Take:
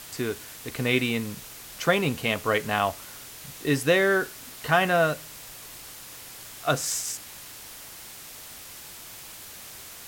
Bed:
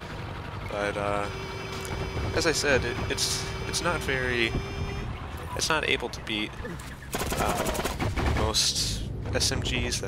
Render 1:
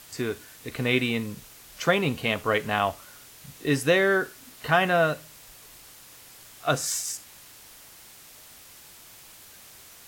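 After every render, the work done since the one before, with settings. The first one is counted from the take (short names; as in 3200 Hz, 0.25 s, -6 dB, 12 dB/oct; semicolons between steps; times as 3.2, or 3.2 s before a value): noise print and reduce 6 dB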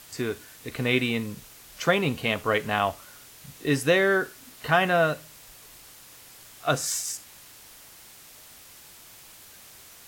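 nothing audible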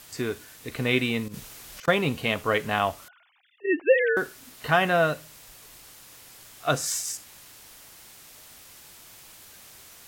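1.28–1.88 negative-ratio compressor -39 dBFS, ratio -0.5; 3.08–4.17 sine-wave speech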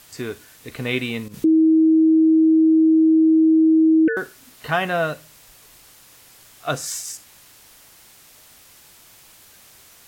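1.44–4.08 bleep 319 Hz -11 dBFS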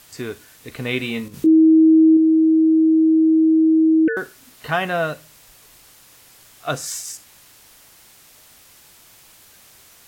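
0.98–2.17 doubler 22 ms -7.5 dB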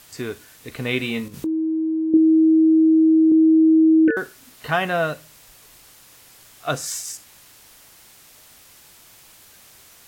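1.33–2.14 compressor 3:1, threshold -25 dBFS; 3.29–4.11 doubler 26 ms -3 dB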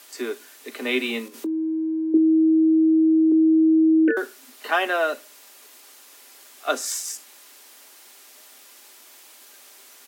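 steep high-pass 240 Hz 96 dB/oct; comb 5 ms, depth 34%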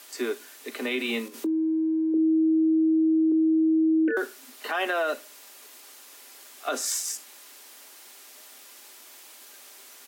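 limiter -18 dBFS, peak gain reduction 9.5 dB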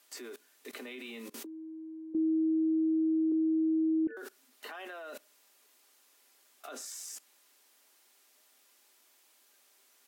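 level quantiser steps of 22 dB; limiter -25 dBFS, peak gain reduction 6.5 dB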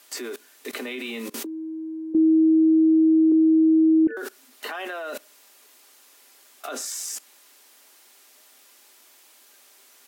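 gain +11.5 dB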